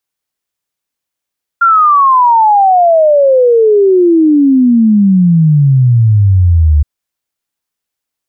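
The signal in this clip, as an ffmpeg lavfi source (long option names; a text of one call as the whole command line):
ffmpeg -f lavfi -i "aevalsrc='0.631*clip(min(t,5.22-t)/0.01,0,1)*sin(2*PI*1400*5.22/log(72/1400)*(exp(log(72/1400)*t/5.22)-1))':duration=5.22:sample_rate=44100" out.wav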